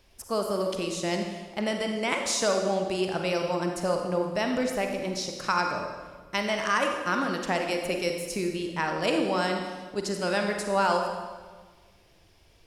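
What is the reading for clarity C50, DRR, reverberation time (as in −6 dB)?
4.0 dB, 3.0 dB, 1.5 s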